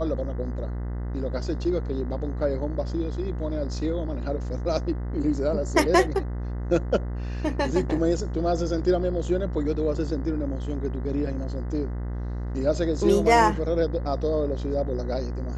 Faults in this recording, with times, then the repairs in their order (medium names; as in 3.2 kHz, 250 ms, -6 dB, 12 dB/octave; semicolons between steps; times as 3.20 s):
buzz 60 Hz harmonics 34 -30 dBFS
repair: de-hum 60 Hz, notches 34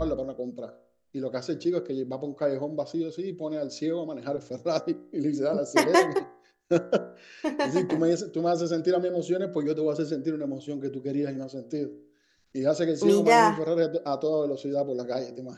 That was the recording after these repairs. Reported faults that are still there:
nothing left